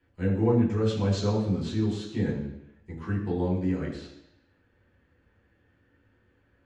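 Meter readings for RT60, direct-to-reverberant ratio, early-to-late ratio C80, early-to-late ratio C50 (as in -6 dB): 0.85 s, -7.5 dB, 7.0 dB, 5.0 dB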